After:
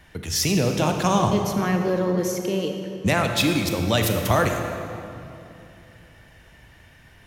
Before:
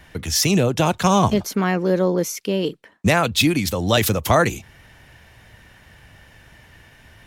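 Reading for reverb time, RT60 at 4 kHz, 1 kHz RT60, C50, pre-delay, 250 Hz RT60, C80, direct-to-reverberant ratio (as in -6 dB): 2.8 s, 1.9 s, 2.6 s, 4.5 dB, 29 ms, 3.2 s, 5.5 dB, 4.0 dB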